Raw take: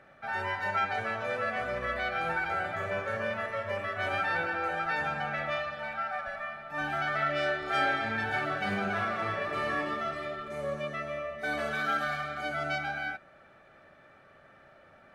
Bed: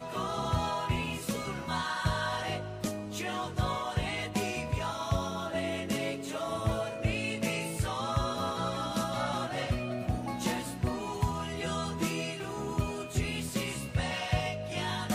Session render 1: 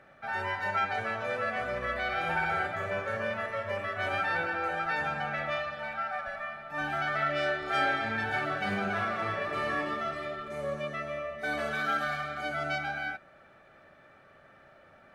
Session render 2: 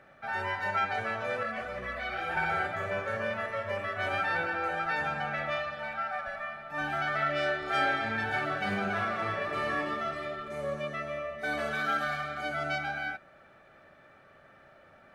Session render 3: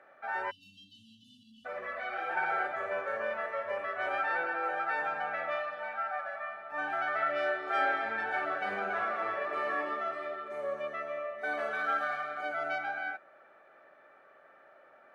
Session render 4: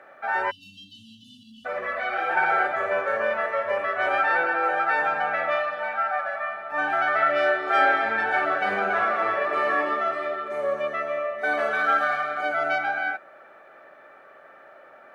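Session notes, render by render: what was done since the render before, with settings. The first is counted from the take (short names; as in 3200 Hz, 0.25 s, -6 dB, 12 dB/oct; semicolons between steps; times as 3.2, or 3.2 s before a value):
2.03–2.67 flutter echo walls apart 10.5 m, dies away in 0.81 s
1.43–2.37 ensemble effect
0.5–1.66 spectral delete 280–2700 Hz; three-band isolator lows -24 dB, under 320 Hz, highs -12 dB, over 2200 Hz
gain +9.5 dB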